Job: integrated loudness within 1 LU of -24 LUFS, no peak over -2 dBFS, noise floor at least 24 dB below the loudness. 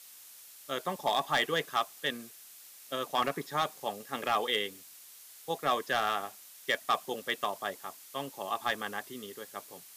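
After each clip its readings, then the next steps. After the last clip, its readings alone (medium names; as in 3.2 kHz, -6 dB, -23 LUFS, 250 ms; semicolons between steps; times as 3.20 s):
clipped samples 0.3%; clipping level -20.0 dBFS; noise floor -53 dBFS; noise floor target -57 dBFS; loudness -33.0 LUFS; peak level -20.0 dBFS; loudness target -24.0 LUFS
-> clip repair -20 dBFS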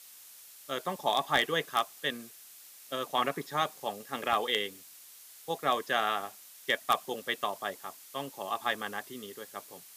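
clipped samples 0.0%; noise floor -53 dBFS; noise floor target -56 dBFS
-> noise print and reduce 6 dB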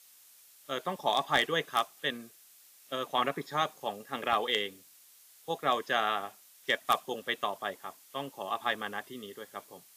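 noise floor -59 dBFS; loudness -32.0 LUFS; peak level -11.0 dBFS; loudness target -24.0 LUFS
-> trim +8 dB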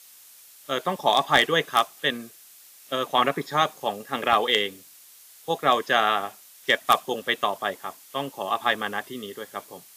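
loudness -24.0 LUFS; peak level -3.0 dBFS; noise floor -51 dBFS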